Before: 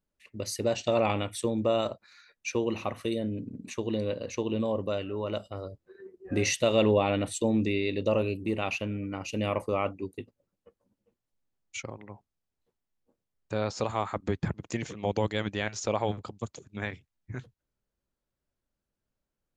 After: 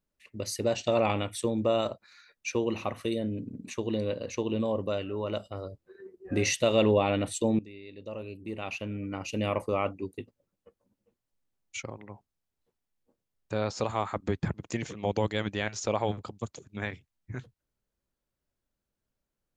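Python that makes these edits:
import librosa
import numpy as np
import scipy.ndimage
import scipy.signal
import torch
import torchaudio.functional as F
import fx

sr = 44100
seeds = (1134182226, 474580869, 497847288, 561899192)

y = fx.edit(x, sr, fx.fade_in_from(start_s=7.59, length_s=1.55, curve='qua', floor_db=-19.0), tone=tone)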